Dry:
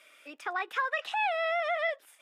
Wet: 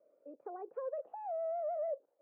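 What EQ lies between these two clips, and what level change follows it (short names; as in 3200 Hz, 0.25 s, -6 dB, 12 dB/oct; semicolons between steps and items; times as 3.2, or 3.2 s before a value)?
ladder low-pass 580 Hz, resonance 65%; air absorption 99 m; +4.5 dB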